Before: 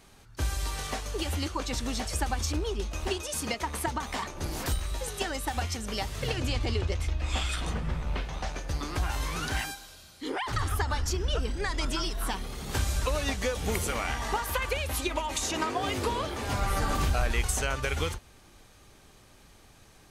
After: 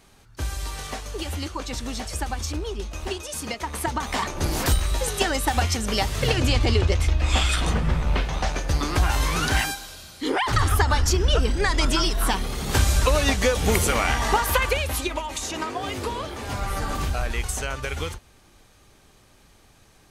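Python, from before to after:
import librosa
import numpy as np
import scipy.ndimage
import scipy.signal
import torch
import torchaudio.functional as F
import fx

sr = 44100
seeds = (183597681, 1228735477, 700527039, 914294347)

y = fx.gain(x, sr, db=fx.line((3.55, 1.0), (4.32, 9.0), (14.56, 9.0), (15.31, 0.5)))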